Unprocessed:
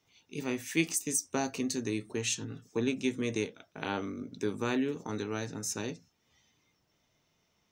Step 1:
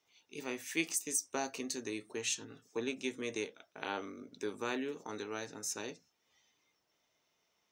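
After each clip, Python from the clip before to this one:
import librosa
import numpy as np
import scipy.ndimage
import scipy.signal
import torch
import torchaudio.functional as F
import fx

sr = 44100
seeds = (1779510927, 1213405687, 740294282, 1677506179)

y = fx.bass_treble(x, sr, bass_db=-14, treble_db=0)
y = y * librosa.db_to_amplitude(-3.0)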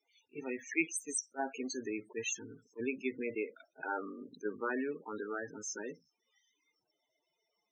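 y = fx.dynamic_eq(x, sr, hz=1600.0, q=1.3, threshold_db=-54.0, ratio=4.0, max_db=5)
y = fx.spec_topn(y, sr, count=16)
y = fx.attack_slew(y, sr, db_per_s=470.0)
y = y * librosa.db_to_amplitude(2.0)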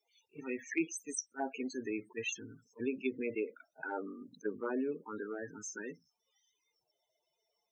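y = fx.env_phaser(x, sr, low_hz=260.0, high_hz=2000.0, full_db=-32.0)
y = y * librosa.db_to_amplitude(2.0)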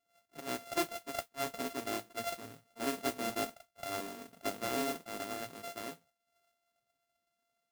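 y = np.r_[np.sort(x[:len(x) // 64 * 64].reshape(-1, 64), axis=1).ravel(), x[len(x) // 64 * 64:]]
y = fx.mod_noise(y, sr, seeds[0], snr_db=11)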